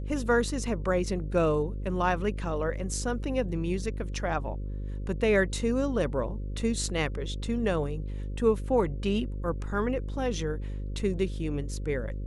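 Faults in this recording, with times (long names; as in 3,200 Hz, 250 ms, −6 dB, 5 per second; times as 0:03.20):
mains buzz 50 Hz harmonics 11 −34 dBFS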